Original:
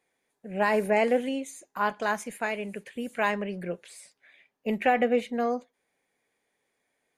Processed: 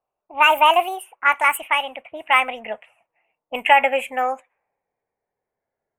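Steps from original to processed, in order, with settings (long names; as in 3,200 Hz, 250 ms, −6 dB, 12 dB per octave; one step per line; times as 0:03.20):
gliding playback speed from 150% → 90%
low-pass that shuts in the quiet parts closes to 450 Hz, open at −25 dBFS
drawn EQ curve 100 Hz 0 dB, 270 Hz −12 dB, 890 Hz +9 dB, 1,300 Hz +7 dB, 2,800 Hz +12 dB, 4,400 Hz −21 dB, 8,000 Hz +11 dB
level +2.5 dB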